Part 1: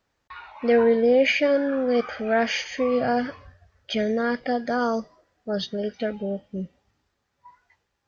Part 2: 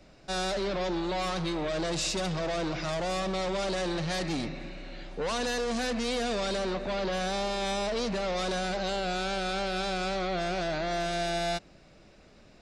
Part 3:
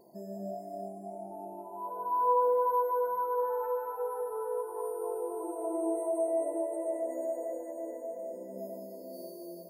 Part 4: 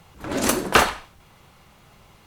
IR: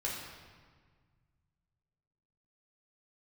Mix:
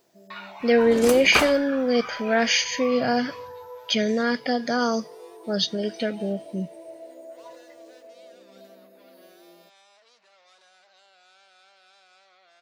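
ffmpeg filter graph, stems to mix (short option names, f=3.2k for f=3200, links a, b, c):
-filter_complex "[0:a]highpass=f=120:w=0.5412,highpass=f=120:w=1.3066,lowshelf=f=450:g=8.5,crystalizer=i=8:c=0,volume=-5.5dB,asplit=2[a][b];[1:a]acompressor=threshold=-45dB:ratio=2,highpass=890,adelay=2100,volume=-14dB[c];[2:a]volume=-8.5dB[d];[3:a]adelay=600,volume=-6.5dB[e];[b]apad=whole_len=427748[f];[d][f]sidechaincompress=threshold=-28dB:ratio=8:attack=16:release=266[g];[a][c][g][e]amix=inputs=4:normalize=0"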